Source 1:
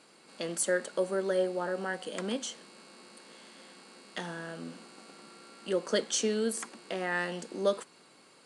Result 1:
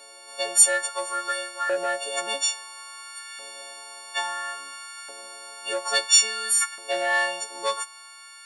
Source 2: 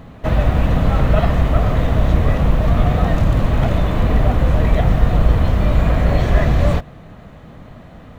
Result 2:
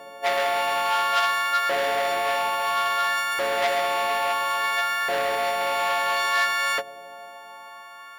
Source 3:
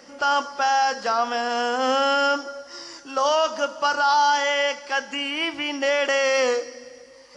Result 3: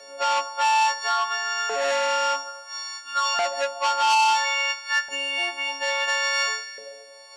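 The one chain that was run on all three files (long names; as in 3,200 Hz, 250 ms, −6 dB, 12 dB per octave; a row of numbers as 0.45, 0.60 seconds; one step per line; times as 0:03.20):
every partial snapped to a pitch grid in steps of 4 semitones
auto-filter high-pass saw up 0.59 Hz 520–1,500 Hz
saturating transformer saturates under 2,800 Hz
loudness normalisation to −23 LKFS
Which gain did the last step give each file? +4.0, −3.0, −4.5 decibels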